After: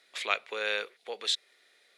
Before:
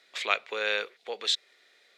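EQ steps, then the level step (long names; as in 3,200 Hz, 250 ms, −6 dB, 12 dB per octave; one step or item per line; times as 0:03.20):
parametric band 10,000 Hz +12 dB 0.31 octaves
−2.5 dB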